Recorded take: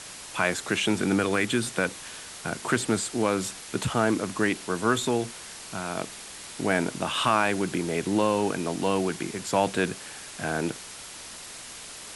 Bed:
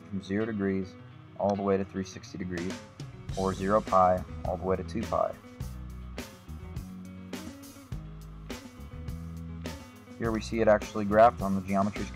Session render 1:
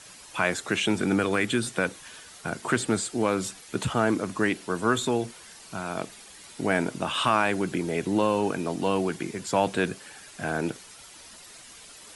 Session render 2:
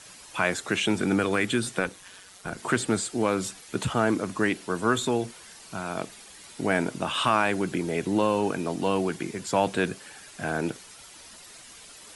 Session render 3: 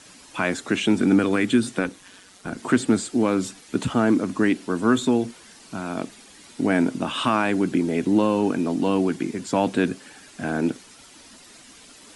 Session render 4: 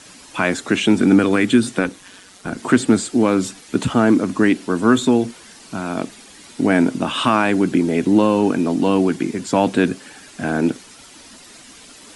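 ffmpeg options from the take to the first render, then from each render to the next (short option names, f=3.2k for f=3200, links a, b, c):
-af "afftdn=nr=9:nf=-42"
-filter_complex "[0:a]asplit=3[a][b][c];[a]afade=t=out:st=1.79:d=0.02[d];[b]tremolo=f=190:d=0.621,afade=t=in:st=1.79:d=0.02,afade=t=out:st=2.57:d=0.02[e];[c]afade=t=in:st=2.57:d=0.02[f];[d][e][f]amix=inputs=3:normalize=0"
-af "lowpass=10k,equalizer=f=260:t=o:w=0.73:g=11"
-af "volume=5dB"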